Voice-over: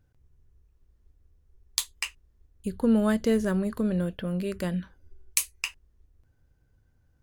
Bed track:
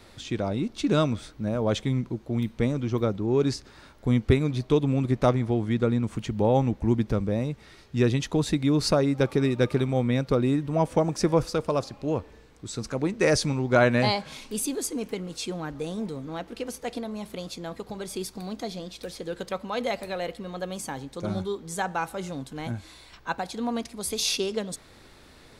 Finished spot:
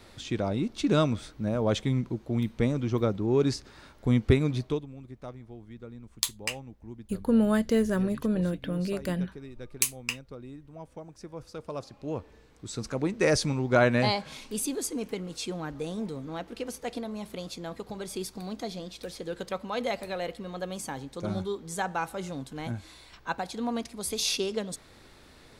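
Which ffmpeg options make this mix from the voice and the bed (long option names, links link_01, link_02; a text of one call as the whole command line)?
ffmpeg -i stem1.wav -i stem2.wav -filter_complex "[0:a]adelay=4450,volume=-0.5dB[link_01];[1:a]volume=17.5dB,afade=type=out:start_time=4.55:duration=0.31:silence=0.105925,afade=type=in:start_time=11.34:duration=1.44:silence=0.11885[link_02];[link_01][link_02]amix=inputs=2:normalize=0" out.wav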